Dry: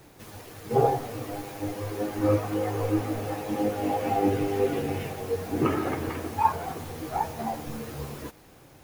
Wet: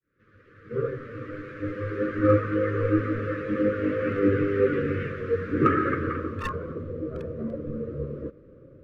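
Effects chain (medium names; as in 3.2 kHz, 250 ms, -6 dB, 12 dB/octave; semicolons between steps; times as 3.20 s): fade-in on the opening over 2.04 s; low-pass sweep 1.6 kHz -> 690 Hz, 5.89–7.00 s; in parallel at -7 dB: one-sided clip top -16 dBFS; on the sum: Chebyshev band-stop 540–1200 Hz, order 3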